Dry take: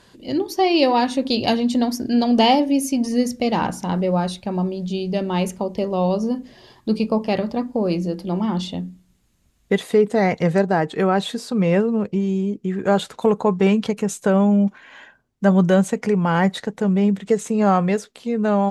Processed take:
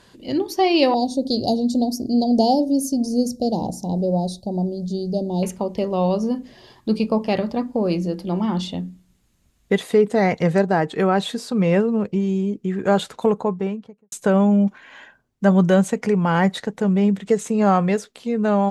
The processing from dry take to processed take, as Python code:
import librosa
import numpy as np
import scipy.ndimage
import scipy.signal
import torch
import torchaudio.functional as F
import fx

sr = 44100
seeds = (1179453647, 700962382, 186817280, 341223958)

y = fx.ellip_bandstop(x, sr, low_hz=730.0, high_hz=4300.0, order=3, stop_db=60, at=(0.94, 5.43))
y = fx.studio_fade_out(y, sr, start_s=13.06, length_s=1.06)